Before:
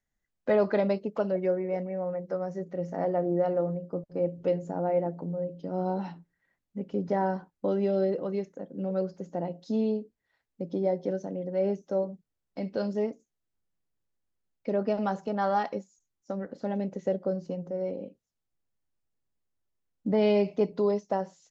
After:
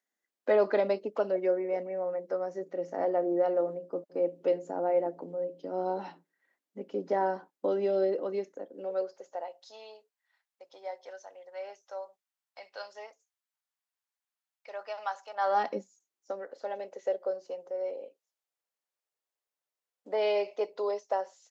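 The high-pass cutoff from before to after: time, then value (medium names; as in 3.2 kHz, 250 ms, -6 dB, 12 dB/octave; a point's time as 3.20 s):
high-pass 24 dB/octave
8.50 s 280 Hz
9.73 s 790 Hz
15.33 s 790 Hz
15.69 s 200 Hz
16.55 s 470 Hz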